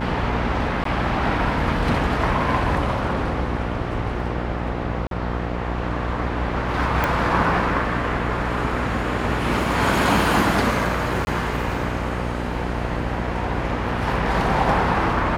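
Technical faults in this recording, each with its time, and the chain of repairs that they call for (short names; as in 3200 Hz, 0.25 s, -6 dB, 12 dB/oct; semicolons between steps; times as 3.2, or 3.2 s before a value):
buzz 60 Hz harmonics 15 -27 dBFS
0.84–0.85 gap 13 ms
5.07–5.11 gap 42 ms
7.04 pop
11.25–11.27 gap 21 ms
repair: de-click; de-hum 60 Hz, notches 15; interpolate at 0.84, 13 ms; interpolate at 5.07, 42 ms; interpolate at 11.25, 21 ms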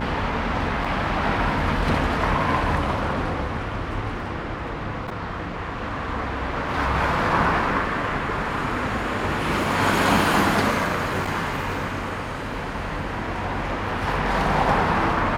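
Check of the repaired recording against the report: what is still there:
none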